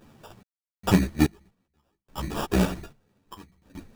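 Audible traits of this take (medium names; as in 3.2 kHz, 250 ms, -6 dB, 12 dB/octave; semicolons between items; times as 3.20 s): random-step tremolo 2.4 Hz, depth 100%; aliases and images of a low sample rate 2.1 kHz, jitter 0%; a shimmering, thickened sound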